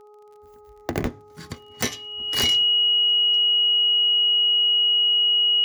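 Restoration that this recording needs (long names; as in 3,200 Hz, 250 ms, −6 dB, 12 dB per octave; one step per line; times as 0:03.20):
click removal
hum removal 419 Hz, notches 3
notch filter 2,900 Hz, Q 30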